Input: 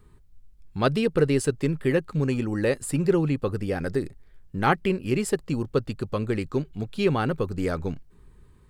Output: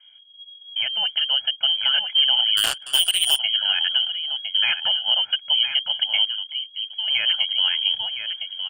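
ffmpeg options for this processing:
ffmpeg -i in.wav -filter_complex "[0:a]asplit=2[link_01][link_02];[link_02]acompressor=threshold=-32dB:ratio=6,volume=-2dB[link_03];[link_01][link_03]amix=inputs=2:normalize=0,alimiter=limit=-15.5dB:level=0:latency=1:release=372,lowpass=frequency=2800:width_type=q:width=0.5098,lowpass=frequency=2800:width_type=q:width=0.6013,lowpass=frequency=2800:width_type=q:width=0.9,lowpass=frequency=2800:width_type=q:width=2.563,afreqshift=-3300,highpass=46,aecho=1:1:1.3:0.97,asplit=2[link_04][link_05];[link_05]aecho=0:1:1009:0.376[link_06];[link_04][link_06]amix=inputs=2:normalize=0,dynaudnorm=framelen=180:gausssize=11:maxgain=11.5dB,asettb=1/sr,asplit=3[link_07][link_08][link_09];[link_07]atrim=end=2.574[link_10];[link_08]atrim=start=2.57:end=3.39,asetpts=PTS-STARTPTS,afade=type=in:duration=0.004:curve=qsin,afade=type=out:start_time=0.816:duration=0.004:curve=qsin,aeval=exprs='0.841*(cos(1*acos(clip(val(0)/0.841,-1,1)))-cos(1*PI/2))+0.0841*(cos(3*acos(clip(val(0)/0.841,-1,1)))-cos(3*PI/2))+0.00596*(cos(4*acos(clip(val(0)/0.841,-1,1)))-cos(4*PI/2))+0.0596*(cos(5*acos(clip(val(0)/0.841,-1,1)))-cos(5*PI/2))+0.211*(cos(7*acos(clip(val(0)/0.841,-1,1)))-cos(7*PI/2))':channel_layout=same[link_11];[link_09]atrim=start=3.386[link_12];[link_10][link_11]acrossfade=duration=0.004:curve1=hsin:curve2=qsin[link_13];[link_13][link_12]acrossfade=duration=0.004:curve1=qsin:curve2=hsin,asettb=1/sr,asplit=3[link_14][link_15][link_16];[link_14]atrim=end=6.254[link_17];[link_15]atrim=start=6.25:end=7.08,asetpts=PTS-STARTPTS,afade=type=in:duration=0.004:curve=qsin,afade=type=out:start_time=0.826:duration=0.004:curve=qsin,aderivative[link_18];[link_16]atrim=start=7.076[link_19];[link_17][link_18]acrossfade=duration=0.004:curve1=hsin:curve2=qsin[link_20];[link_20][link_19]acrossfade=duration=0.004:curve1=qsin:curve2=hsin,volume=-6.5dB" out.wav

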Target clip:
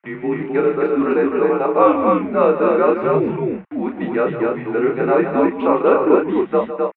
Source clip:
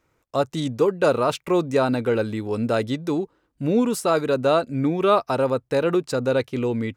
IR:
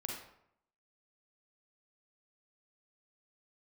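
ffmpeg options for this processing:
-filter_complex "[0:a]areverse,acrossover=split=1700[link_01][link_02];[link_01]aeval=exprs='val(0)*gte(abs(val(0)),0.0141)':channel_layout=same[link_03];[link_03][link_02]amix=inputs=2:normalize=0,highpass=frequency=340:width_type=q:width=0.5412,highpass=frequency=340:width_type=q:width=1.307,lowpass=frequency=2500:width_type=q:width=0.5176,lowpass=frequency=2500:width_type=q:width=0.7071,lowpass=frequency=2500:width_type=q:width=1.932,afreqshift=-88,asplit=2[link_04][link_05];[link_05]adelay=32,volume=-4.5dB[link_06];[link_04][link_06]amix=inputs=2:normalize=0,asplit=2[link_07][link_08];[link_08]aecho=0:1:154.5|259.5:0.282|0.708[link_09];[link_07][link_09]amix=inputs=2:normalize=0,volume=3.5dB"

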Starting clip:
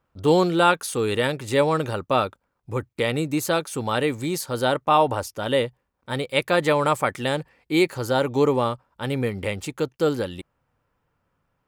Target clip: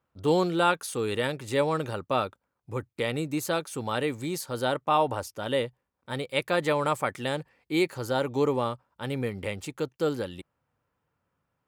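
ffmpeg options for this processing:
ffmpeg -i in.wav -af "highpass=61,volume=-5.5dB" out.wav

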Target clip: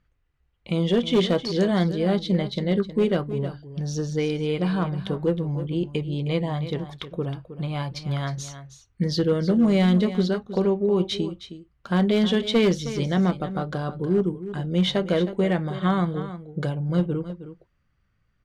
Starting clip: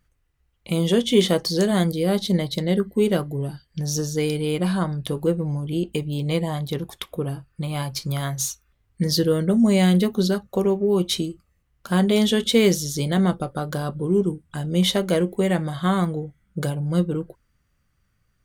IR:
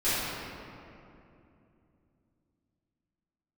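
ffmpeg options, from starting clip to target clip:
-af "lowpass=3800,asoftclip=type=hard:threshold=-12.5dB,aecho=1:1:315:0.237,volume=-1.5dB"

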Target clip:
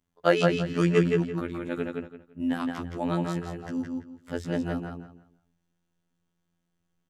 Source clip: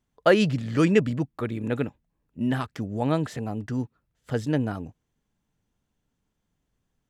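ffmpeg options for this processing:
ffmpeg -i in.wav -filter_complex "[0:a]afftfilt=real='hypot(re,im)*cos(PI*b)':imag='0':win_size=2048:overlap=0.75,asplit=2[link_01][link_02];[link_02]adelay=168,lowpass=frequency=5000:poles=1,volume=-3dB,asplit=2[link_03][link_04];[link_04]adelay=168,lowpass=frequency=5000:poles=1,volume=0.26,asplit=2[link_05][link_06];[link_06]adelay=168,lowpass=frequency=5000:poles=1,volume=0.26,asplit=2[link_07][link_08];[link_08]adelay=168,lowpass=frequency=5000:poles=1,volume=0.26[link_09];[link_03][link_05][link_07][link_09]amix=inputs=4:normalize=0[link_10];[link_01][link_10]amix=inputs=2:normalize=0" out.wav

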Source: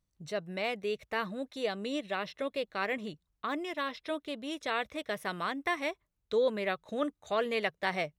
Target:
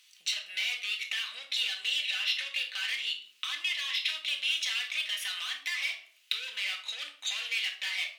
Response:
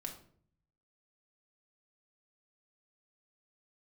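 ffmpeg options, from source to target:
-filter_complex "[0:a]asplit=2[link_01][link_02];[link_02]highpass=frequency=720:poles=1,volume=31dB,asoftclip=type=tanh:threshold=-15dB[link_03];[link_01][link_03]amix=inputs=2:normalize=0,lowpass=frequency=6000:poles=1,volume=-6dB,acompressor=threshold=-36dB:ratio=10,highpass=frequency=2800:width_type=q:width=3.4[link_04];[1:a]atrim=start_sample=2205[link_05];[link_04][link_05]afir=irnorm=-1:irlink=0,volume=7dB" -ar 48000 -c:a libvorbis -b:a 192k

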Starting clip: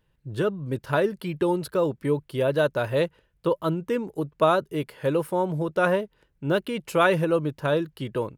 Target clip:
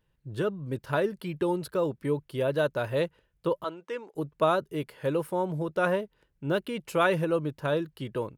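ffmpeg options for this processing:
ffmpeg -i in.wav -filter_complex "[0:a]asettb=1/sr,asplit=3[link_01][link_02][link_03];[link_01]atrim=end=3.644[link_04];[link_02]atrim=start=3.64:end=4.15,asetpts=PTS-STARTPTS,afade=type=in:duration=0.004:curve=qsin,afade=type=out:start_time=0.506:duration=0.004:curve=qsin,highpass=550,lowpass=6400[link_05];[link_03]atrim=start=4.146[link_06];[link_04][link_05]acrossfade=duration=0.004:curve1=hsin:curve2=qsin[link_07];[link_07][link_06]acrossfade=duration=0.004:curve1=qsin:curve2=hsin,volume=-4dB" out.wav

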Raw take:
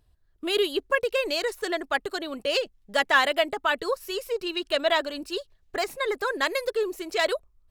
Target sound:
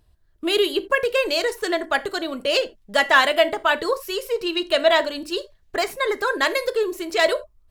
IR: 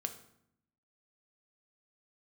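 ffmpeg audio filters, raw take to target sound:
-filter_complex "[0:a]asplit=2[link_01][link_02];[1:a]atrim=start_sample=2205,afade=type=out:start_time=0.18:duration=0.01,atrim=end_sample=8379,asetrate=61740,aresample=44100[link_03];[link_02][link_03]afir=irnorm=-1:irlink=0,volume=6.5dB[link_04];[link_01][link_04]amix=inputs=2:normalize=0,volume=-2.5dB"

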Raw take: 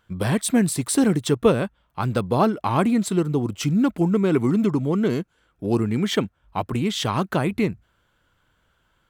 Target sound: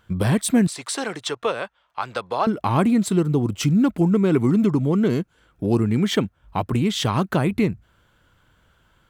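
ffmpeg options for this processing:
ffmpeg -i in.wav -filter_complex "[0:a]asettb=1/sr,asplit=3[link_01][link_02][link_03];[link_01]atrim=end=0.674[link_04];[link_02]atrim=start=0.67:end=2.47,asetpts=PTS-STARTPTS,afade=type=in:duration=0.004:curve=qsin,afade=type=out:start_time=1.796:duration=0.004:curve=qsin,acrossover=split=540 7400:gain=0.0631 1 0.141[link_05][link_06][link_07];[link_05][link_06][link_07]amix=inputs=3:normalize=0[link_08];[link_03]atrim=start=2.466[link_09];[link_04][link_08]acrossfade=duration=0.004:curve1=hsin:curve2=qsin[link_10];[link_10][link_09]acrossfade=duration=0.004:curve1=qsin:curve2=hsin,asplit=2[link_11][link_12];[link_12]acompressor=threshold=-31dB:ratio=6,volume=2.5dB[link_13];[link_11][link_13]amix=inputs=2:normalize=0,equalizer=frequency=100:width_type=o:width=2.9:gain=3.5,volume=-2.5dB" out.wav

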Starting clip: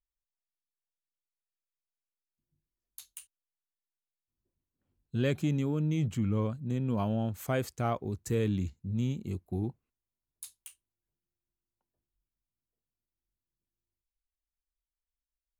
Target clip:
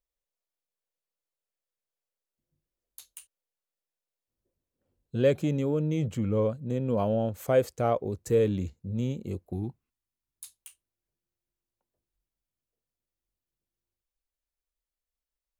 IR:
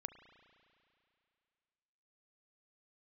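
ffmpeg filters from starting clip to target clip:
-af "asetnsamples=nb_out_samples=441:pad=0,asendcmd='9.53 equalizer g -4;10.53 equalizer g 6.5',equalizer=frequency=520:width_type=o:width=0.72:gain=12.5"

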